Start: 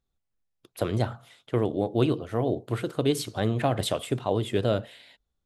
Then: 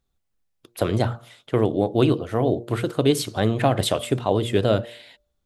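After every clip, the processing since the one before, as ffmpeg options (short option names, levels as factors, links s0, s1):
-af "bandreject=f=117.7:t=h:w=4,bandreject=f=235.4:t=h:w=4,bandreject=f=353.1:t=h:w=4,bandreject=f=470.8:t=h:w=4,bandreject=f=588.5:t=h:w=4,volume=1.88"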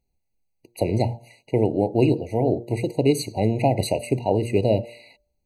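-af "afftfilt=real='re*eq(mod(floor(b*sr/1024/970),2),0)':imag='im*eq(mod(floor(b*sr/1024/970),2),0)':win_size=1024:overlap=0.75"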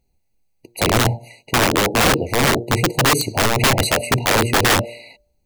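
-af "aeval=exprs='(mod(7.08*val(0)+1,2)-1)/7.08':c=same,volume=2.51"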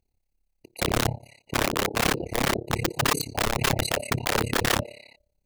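-af "tremolo=f=34:d=1,volume=0.596"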